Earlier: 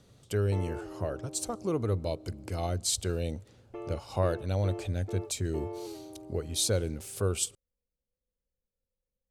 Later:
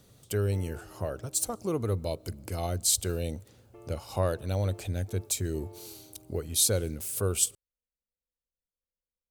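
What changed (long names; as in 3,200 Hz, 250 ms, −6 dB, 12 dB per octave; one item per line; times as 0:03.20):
speech: remove high-frequency loss of the air 52 metres
background −10.5 dB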